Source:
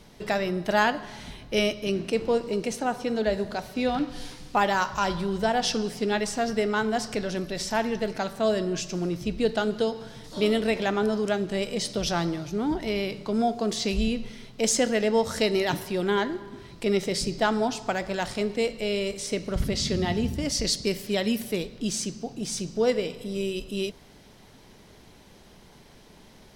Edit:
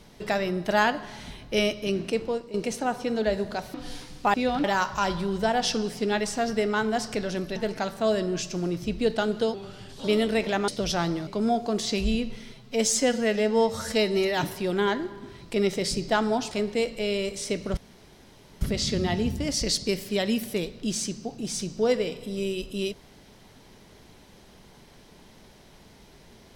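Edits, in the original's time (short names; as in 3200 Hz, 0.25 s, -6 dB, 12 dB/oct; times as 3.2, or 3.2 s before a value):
2.09–2.54 fade out, to -14 dB
3.74–4.04 move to 4.64
7.56–7.95 cut
9.93–10.37 speed 88%
11.01–11.85 cut
12.44–13.2 cut
14.46–15.72 stretch 1.5×
17.81–18.33 cut
19.59 insert room tone 0.84 s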